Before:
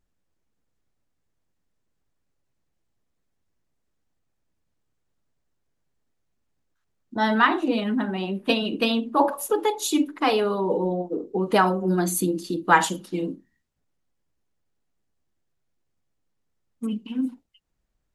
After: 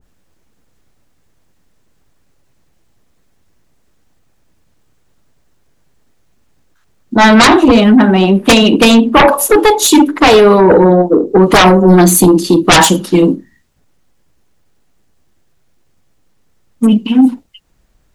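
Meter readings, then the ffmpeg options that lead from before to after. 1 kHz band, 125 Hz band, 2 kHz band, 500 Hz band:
+13.0 dB, +18.0 dB, +13.5 dB, +16.5 dB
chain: -af "aeval=exprs='0.708*sin(PI/2*5.62*val(0)/0.708)':c=same,adynamicequalizer=threshold=0.0794:dfrequency=1500:dqfactor=0.7:tfrequency=1500:tqfactor=0.7:attack=5:release=100:ratio=0.375:range=1.5:mode=cutabove:tftype=highshelf,volume=1.5dB"

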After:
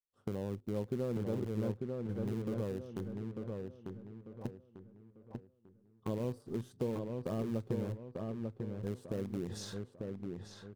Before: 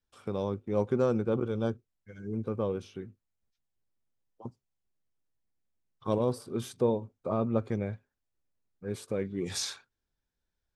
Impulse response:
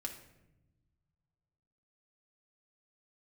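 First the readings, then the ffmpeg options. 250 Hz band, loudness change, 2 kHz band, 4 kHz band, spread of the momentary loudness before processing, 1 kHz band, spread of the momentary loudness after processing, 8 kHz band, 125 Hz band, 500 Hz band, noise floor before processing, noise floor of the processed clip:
-4.0 dB, -7.5 dB, -7.5 dB, -11.0 dB, 17 LU, -11.0 dB, 13 LU, -12.5 dB, -2.5 dB, -7.5 dB, under -85 dBFS, -67 dBFS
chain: -filter_complex "[0:a]agate=range=-33dB:threshold=-47dB:ratio=3:detection=peak,asuperstop=centerf=2300:order=4:qfactor=5.7,tiltshelf=f=700:g=8,asplit=2[a][b];[b]acrusher=bits=5:dc=4:mix=0:aa=0.000001,volume=-9.5dB[c];[a][c]amix=inputs=2:normalize=0,acompressor=threshold=-37dB:ratio=2.5,asplit=2[d][e];[e]adelay=895,lowpass=f=2.8k:p=1,volume=-3.5dB,asplit=2[f][g];[g]adelay=895,lowpass=f=2.8k:p=1,volume=0.37,asplit=2[h][i];[i]adelay=895,lowpass=f=2.8k:p=1,volume=0.37,asplit=2[j][k];[k]adelay=895,lowpass=f=2.8k:p=1,volume=0.37,asplit=2[l][m];[m]adelay=895,lowpass=f=2.8k:p=1,volume=0.37[n];[f][h][j][l][n]amix=inputs=5:normalize=0[o];[d][o]amix=inputs=2:normalize=0,volume=-2.5dB"

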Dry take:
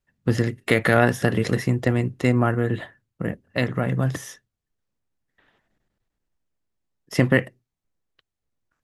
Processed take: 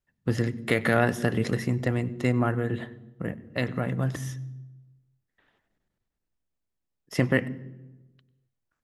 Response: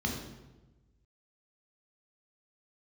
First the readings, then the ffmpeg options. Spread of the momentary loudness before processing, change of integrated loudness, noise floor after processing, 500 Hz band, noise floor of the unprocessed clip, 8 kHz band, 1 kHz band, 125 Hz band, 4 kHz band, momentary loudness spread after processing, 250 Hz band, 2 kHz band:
13 LU, -5.0 dB, -82 dBFS, -5.0 dB, -84 dBFS, -5.0 dB, -5.0 dB, -4.5 dB, -5.0 dB, 15 LU, -4.5 dB, -5.0 dB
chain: -filter_complex "[0:a]asplit=2[a][b];[1:a]atrim=start_sample=2205,adelay=96[c];[b][c]afir=irnorm=-1:irlink=0,volume=-25.5dB[d];[a][d]amix=inputs=2:normalize=0,volume=-5dB"

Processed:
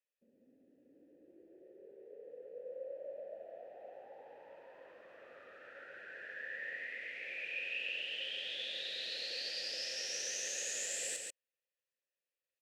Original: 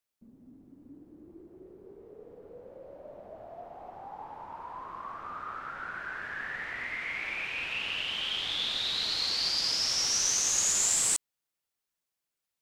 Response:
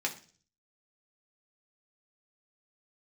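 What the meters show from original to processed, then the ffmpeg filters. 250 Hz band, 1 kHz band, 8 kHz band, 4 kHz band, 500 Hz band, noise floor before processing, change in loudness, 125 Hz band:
-13.5 dB, -19.0 dB, -13.5 dB, -11.0 dB, -0.5 dB, under -85 dBFS, -11.5 dB, under -20 dB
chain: -filter_complex "[0:a]acrossover=split=460|3000[a][b][c];[b]acompressor=threshold=-41dB:ratio=6[d];[a][d][c]amix=inputs=3:normalize=0,asplit=3[e][f][g];[e]bandpass=f=530:t=q:w=8,volume=0dB[h];[f]bandpass=f=1.84k:t=q:w=8,volume=-6dB[i];[g]bandpass=f=2.48k:t=q:w=8,volume=-9dB[j];[h][i][j]amix=inputs=3:normalize=0,aemphasis=mode=production:type=50fm,asplit=2[k][l];[l]aecho=0:1:139:0.668[m];[k][m]amix=inputs=2:normalize=0,volume=4.5dB"

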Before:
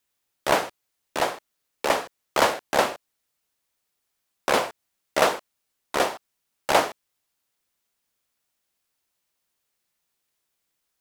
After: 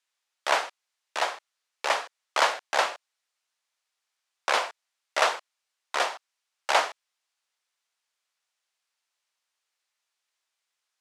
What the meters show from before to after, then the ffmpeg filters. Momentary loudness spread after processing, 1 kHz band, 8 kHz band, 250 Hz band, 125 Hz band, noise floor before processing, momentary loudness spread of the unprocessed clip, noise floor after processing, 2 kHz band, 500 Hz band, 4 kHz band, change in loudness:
14 LU, -2.0 dB, -3.0 dB, -16.5 dB, under -25 dB, -78 dBFS, 14 LU, -84 dBFS, 0.0 dB, -6.5 dB, -0.5 dB, -2.5 dB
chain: -af "highpass=790,lowpass=7.2k"

